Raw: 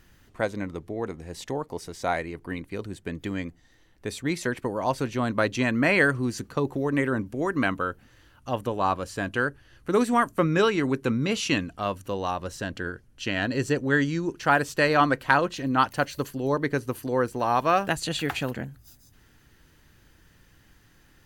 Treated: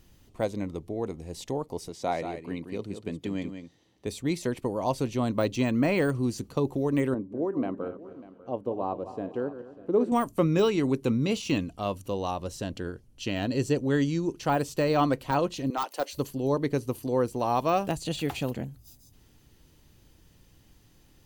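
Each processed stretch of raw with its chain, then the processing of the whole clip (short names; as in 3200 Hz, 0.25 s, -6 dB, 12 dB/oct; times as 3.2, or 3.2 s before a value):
1.89–4.07 HPF 120 Hz + high shelf 10000 Hz -12 dB + echo 0.181 s -8.5 dB
7.14–10.12 regenerating reverse delay 0.124 s, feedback 52%, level -11.5 dB + band-pass 410 Hz, Q 0.96 + echo 0.594 s -18 dB
15.7–16.13 HPF 370 Hz 24 dB/oct + hard clip -15.5 dBFS
whole clip: de-esser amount 80%; bell 1600 Hz -12.5 dB 0.87 oct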